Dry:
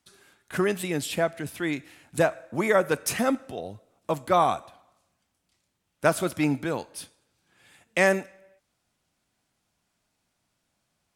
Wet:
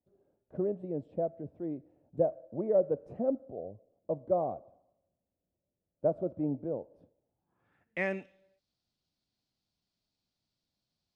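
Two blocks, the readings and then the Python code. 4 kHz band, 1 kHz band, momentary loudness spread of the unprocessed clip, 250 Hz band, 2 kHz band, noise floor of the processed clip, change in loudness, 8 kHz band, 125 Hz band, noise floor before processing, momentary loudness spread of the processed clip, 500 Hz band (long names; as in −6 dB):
below −25 dB, −14.5 dB, 14 LU, −8.0 dB, −15.0 dB, below −85 dBFS, −7.5 dB, below −40 dB, −8.5 dB, −77 dBFS, 15 LU, −5.0 dB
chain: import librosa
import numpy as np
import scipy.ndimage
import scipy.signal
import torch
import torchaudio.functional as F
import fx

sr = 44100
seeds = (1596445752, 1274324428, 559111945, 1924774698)

y = fx.peak_eq(x, sr, hz=1600.0, db=-11.5, octaves=2.5)
y = fx.filter_sweep_lowpass(y, sr, from_hz=580.0, to_hz=4400.0, start_s=7.15, end_s=8.5, q=3.4)
y = y * librosa.db_to_amplitude(-8.5)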